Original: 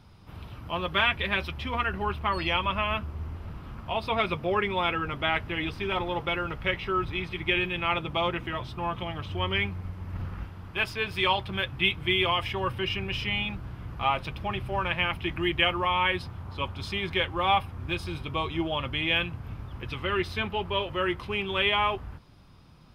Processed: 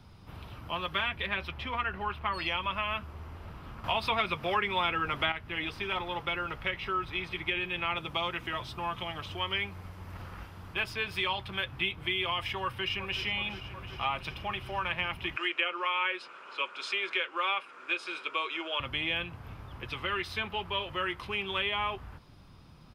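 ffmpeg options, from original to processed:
-filter_complex "[0:a]asettb=1/sr,asplit=3[s0][s1][s2];[s0]atrim=end=1.264[s3];[s1]atrim=start=1.26:end=2.34,asetpts=PTS-STARTPTS,afade=t=in:d=0.004:c=qsin,afade=t=out:st=1.076:d=0.004:c=qsin,bass=f=250:g=3,treble=f=4000:g=-7[s4];[s2]atrim=start=2.336[s5];[s3][s4]acrossfade=d=0.004:c1=hsin:c2=qsin[s6];[s6][s5]acrossfade=d=0.004:c1=qsin:c2=hsin,asettb=1/sr,asplit=3[s7][s8][s9];[s7]atrim=end=7.964[s10];[s8]atrim=start=7.96:end=10.74,asetpts=PTS-STARTPTS,afade=t=in:d=0.004:c=qsin,afade=t=out:st=2.776:d=0.004:c=qsin,bass=f=250:g=-1,treble=f=4000:g=5[s11];[s9]atrim=start=10.736[s12];[s10][s11]acrossfade=d=0.004:c1=hsin:c2=qsin[s13];[s13][s12]acrossfade=d=0.004:c1=qsin:c2=hsin,asplit=2[s14][s15];[s15]afade=t=in:st=12.62:d=0.01,afade=t=out:st=13.23:d=0.01,aecho=0:1:370|740|1110|1480|1850|2220|2590|2960|3330|3700|4070|4440:0.211349|0.169079|0.135263|0.108211|0.0865685|0.0692548|0.0554038|0.0443231|0.0354585|0.0283668|0.0226934|0.0181547[s16];[s14][s16]amix=inputs=2:normalize=0,asettb=1/sr,asplit=3[s17][s18][s19];[s17]atrim=end=15.364[s20];[s18]atrim=start=15.36:end=18.8,asetpts=PTS-STARTPTS,afade=t=in:d=0.004:c=qsin,afade=t=out:st=3.436:d=0.004:c=qsin,highpass=f=420:w=0.5412,highpass=f=420:w=1.3066,equalizer=f=760:t=q:w=4:g=-9,equalizer=f=1400:t=q:w=4:g=10,equalizer=f=2500:t=q:w=4:g=7,equalizer=f=7200:t=q:w=4:g=4,lowpass=f=9200:w=0.5412,lowpass=f=9200:w=1.3066[s21];[s19]atrim=start=18.796[s22];[s20][s21]acrossfade=d=0.004:c1=hsin:c2=qsin[s23];[s23][s22]acrossfade=d=0.004:c1=qsin:c2=hsin,asplit=3[s24][s25][s26];[s24]atrim=end=3.842[s27];[s25]atrim=start=3.838:end=5.322,asetpts=PTS-STARTPTS,volume=3.16[s28];[s26]atrim=start=5.318[s29];[s27][s28]acrossfade=d=0.004:c1=hsin:c2=hsin[s30];[s30][s29]acrossfade=d=0.004:c1=hsin:c2=hsin,acrossover=split=400|850[s31][s32][s33];[s31]acompressor=threshold=0.00708:ratio=4[s34];[s32]acompressor=threshold=0.00631:ratio=4[s35];[s33]acompressor=threshold=0.0355:ratio=4[s36];[s34][s35][s36]amix=inputs=3:normalize=0"

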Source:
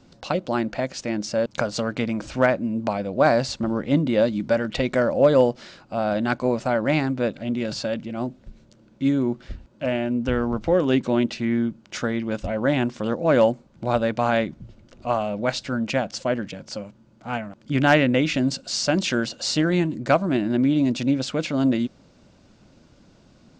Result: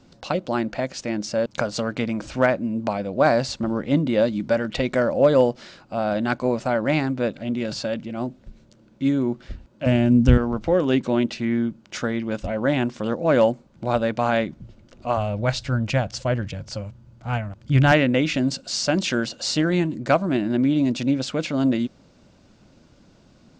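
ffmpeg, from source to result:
-filter_complex "[0:a]asettb=1/sr,asplit=3[s0][s1][s2];[s0]atrim=end=9.864[s3];[s1]atrim=start=9.86:end=10.38,asetpts=PTS-STARTPTS,afade=t=in:d=0.004:c=qsin,afade=t=out:st=0.516:d=0.004:c=qsin,bass=f=250:g=15,treble=f=4000:g=10[s4];[s2]atrim=start=10.376[s5];[s3][s4]acrossfade=d=0.004:c1=hsin:c2=qsin[s6];[s6][s5]acrossfade=d=0.004:c1=qsin:c2=hsin,asettb=1/sr,asplit=3[s7][s8][s9];[s7]atrim=end=15.174[s10];[s8]atrim=start=15.17:end=17.92,asetpts=PTS-STARTPTS,afade=t=in:d=0.004:c=qsin,afade=t=out:st=2.746:d=0.004:c=qsin,lowshelf=f=150:t=q:w=1.5:g=12.5[s11];[s9]atrim=start=17.916[s12];[s10][s11]acrossfade=d=0.004:c1=hsin:c2=qsin[s13];[s13][s12]acrossfade=d=0.004:c1=qsin:c2=hsin"

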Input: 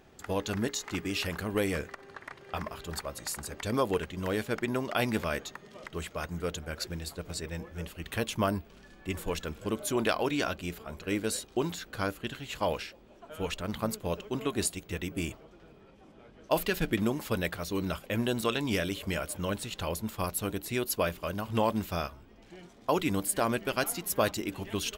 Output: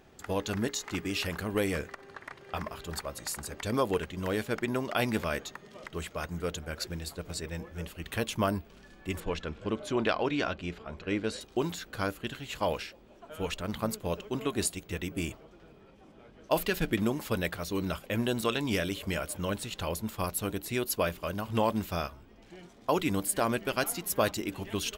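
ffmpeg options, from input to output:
-filter_complex "[0:a]asettb=1/sr,asplit=3[s0][s1][s2];[s0]atrim=end=9.204[s3];[s1]atrim=start=9.2:end=11.41,asetpts=PTS-STARTPTS,afade=t=in:d=0.004:c=qsin,afade=t=out:st=2.206:d=0.004:c=qsin,lowpass=4300[s4];[s2]atrim=start=11.406[s5];[s3][s4]acrossfade=d=0.004:c1=hsin:c2=qsin[s6];[s6][s5]acrossfade=d=0.004:c1=qsin:c2=hsin"

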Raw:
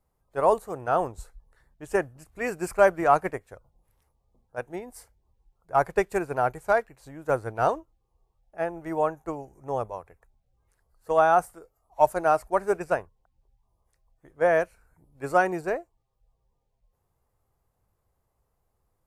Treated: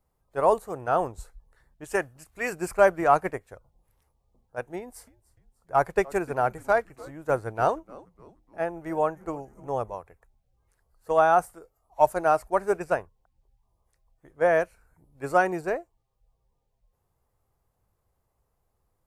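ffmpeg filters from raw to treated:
-filter_complex "[0:a]asettb=1/sr,asplit=3[s0][s1][s2];[s0]atrim=end=1.844[s3];[s1]atrim=start=1.84:end=2.53,asetpts=PTS-STARTPTS,afade=t=in:d=0.004:c=qsin,afade=t=out:st=0.686:d=0.004:c=qsin,tiltshelf=f=970:g=-4[s4];[s2]atrim=start=2.526[s5];[s3][s4]acrossfade=d=0.004:c1=hsin:c2=qsin[s6];[s6][s5]acrossfade=d=0.004:c1=qsin:c2=hsin,asettb=1/sr,asplit=3[s7][s8][s9];[s7]atrim=end=4.774[s10];[s8]atrim=start=4.77:end=9.96,asetpts=PTS-STARTPTS,afade=t=in:d=0.004:c=qsin,afade=t=out:st=5.186:d=0.004:c=qsin,asplit=4[s11][s12][s13][s14];[s12]adelay=299,afreqshift=-140,volume=0.0794[s15];[s13]adelay=598,afreqshift=-280,volume=0.038[s16];[s14]adelay=897,afreqshift=-420,volume=0.0182[s17];[s11][s15][s16][s17]amix=inputs=4:normalize=0,atrim=end_sample=228879[s18];[s9]atrim=start=9.956[s19];[s10][s18]acrossfade=d=0.004:c1=hsin:c2=qsin[s20];[s20][s19]acrossfade=d=0.004:c1=qsin:c2=hsin"

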